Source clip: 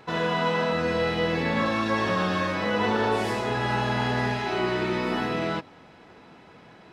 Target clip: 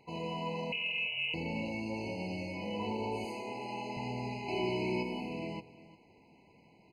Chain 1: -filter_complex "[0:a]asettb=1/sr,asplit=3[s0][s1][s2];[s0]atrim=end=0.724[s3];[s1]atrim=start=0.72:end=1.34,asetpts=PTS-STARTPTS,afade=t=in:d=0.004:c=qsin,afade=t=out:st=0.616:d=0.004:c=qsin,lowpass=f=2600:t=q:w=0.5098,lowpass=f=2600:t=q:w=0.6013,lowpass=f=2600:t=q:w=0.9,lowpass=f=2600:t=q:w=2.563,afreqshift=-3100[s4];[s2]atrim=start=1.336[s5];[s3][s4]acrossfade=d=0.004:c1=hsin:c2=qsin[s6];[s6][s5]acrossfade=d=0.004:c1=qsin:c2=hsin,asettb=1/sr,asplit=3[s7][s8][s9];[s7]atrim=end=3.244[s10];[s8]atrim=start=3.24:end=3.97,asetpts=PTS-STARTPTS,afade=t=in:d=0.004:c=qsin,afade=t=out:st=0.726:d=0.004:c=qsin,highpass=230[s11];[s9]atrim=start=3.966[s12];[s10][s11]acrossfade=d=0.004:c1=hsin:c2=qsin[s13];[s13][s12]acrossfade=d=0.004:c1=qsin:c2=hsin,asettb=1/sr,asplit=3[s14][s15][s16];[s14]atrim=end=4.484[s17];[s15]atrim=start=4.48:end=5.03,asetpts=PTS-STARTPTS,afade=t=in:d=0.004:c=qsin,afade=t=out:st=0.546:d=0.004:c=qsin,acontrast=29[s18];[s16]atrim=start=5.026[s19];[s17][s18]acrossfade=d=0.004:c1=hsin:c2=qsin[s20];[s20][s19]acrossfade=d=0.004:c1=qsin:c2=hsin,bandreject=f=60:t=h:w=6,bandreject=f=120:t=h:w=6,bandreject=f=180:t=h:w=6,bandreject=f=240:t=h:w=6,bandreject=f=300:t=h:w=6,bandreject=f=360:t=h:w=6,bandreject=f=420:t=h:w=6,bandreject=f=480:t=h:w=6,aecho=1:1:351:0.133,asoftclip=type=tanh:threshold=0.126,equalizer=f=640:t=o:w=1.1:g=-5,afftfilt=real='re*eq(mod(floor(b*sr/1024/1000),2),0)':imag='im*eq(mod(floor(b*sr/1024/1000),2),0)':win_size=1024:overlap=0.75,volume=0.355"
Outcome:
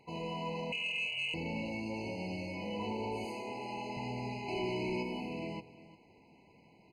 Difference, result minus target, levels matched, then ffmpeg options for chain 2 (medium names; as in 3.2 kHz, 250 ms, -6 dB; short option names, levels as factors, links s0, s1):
saturation: distortion +19 dB
-filter_complex "[0:a]asettb=1/sr,asplit=3[s0][s1][s2];[s0]atrim=end=0.724[s3];[s1]atrim=start=0.72:end=1.34,asetpts=PTS-STARTPTS,afade=t=in:d=0.004:c=qsin,afade=t=out:st=0.616:d=0.004:c=qsin,lowpass=f=2600:t=q:w=0.5098,lowpass=f=2600:t=q:w=0.6013,lowpass=f=2600:t=q:w=0.9,lowpass=f=2600:t=q:w=2.563,afreqshift=-3100[s4];[s2]atrim=start=1.336[s5];[s3][s4]acrossfade=d=0.004:c1=hsin:c2=qsin[s6];[s6][s5]acrossfade=d=0.004:c1=qsin:c2=hsin,asettb=1/sr,asplit=3[s7][s8][s9];[s7]atrim=end=3.244[s10];[s8]atrim=start=3.24:end=3.97,asetpts=PTS-STARTPTS,afade=t=in:d=0.004:c=qsin,afade=t=out:st=0.726:d=0.004:c=qsin,highpass=230[s11];[s9]atrim=start=3.966[s12];[s10][s11]acrossfade=d=0.004:c1=hsin:c2=qsin[s13];[s13][s12]acrossfade=d=0.004:c1=qsin:c2=hsin,asettb=1/sr,asplit=3[s14][s15][s16];[s14]atrim=end=4.484[s17];[s15]atrim=start=4.48:end=5.03,asetpts=PTS-STARTPTS,afade=t=in:d=0.004:c=qsin,afade=t=out:st=0.546:d=0.004:c=qsin,acontrast=29[s18];[s16]atrim=start=5.026[s19];[s17][s18]acrossfade=d=0.004:c1=hsin:c2=qsin[s20];[s20][s19]acrossfade=d=0.004:c1=qsin:c2=hsin,bandreject=f=60:t=h:w=6,bandreject=f=120:t=h:w=6,bandreject=f=180:t=h:w=6,bandreject=f=240:t=h:w=6,bandreject=f=300:t=h:w=6,bandreject=f=360:t=h:w=6,bandreject=f=420:t=h:w=6,bandreject=f=480:t=h:w=6,aecho=1:1:351:0.133,asoftclip=type=tanh:threshold=0.473,equalizer=f=640:t=o:w=1.1:g=-5,afftfilt=real='re*eq(mod(floor(b*sr/1024/1000),2),0)':imag='im*eq(mod(floor(b*sr/1024/1000),2),0)':win_size=1024:overlap=0.75,volume=0.355"